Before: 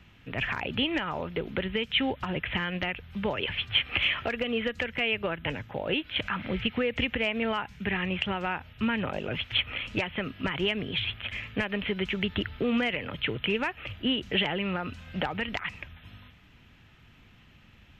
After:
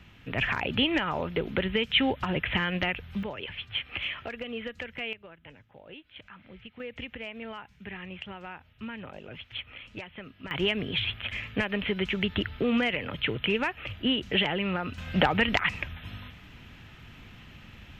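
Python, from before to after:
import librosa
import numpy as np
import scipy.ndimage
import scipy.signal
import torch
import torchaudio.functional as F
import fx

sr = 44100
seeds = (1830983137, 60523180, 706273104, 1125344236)

y = fx.gain(x, sr, db=fx.steps((0.0, 2.5), (3.23, -7.0), (5.13, -18.0), (6.8, -11.0), (10.51, 1.0), (14.98, 7.5)))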